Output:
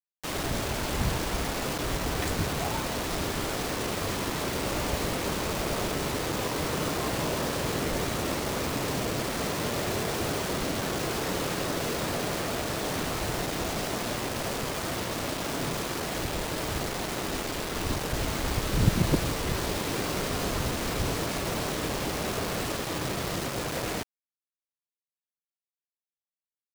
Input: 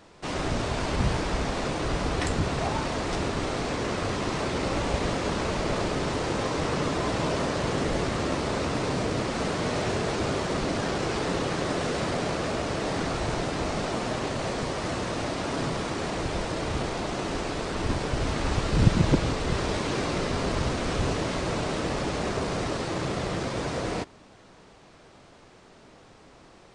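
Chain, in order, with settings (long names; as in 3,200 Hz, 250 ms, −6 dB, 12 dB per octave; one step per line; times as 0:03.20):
pitch vibrato 0.9 Hz 73 cents
bit reduction 5 bits
level −3 dB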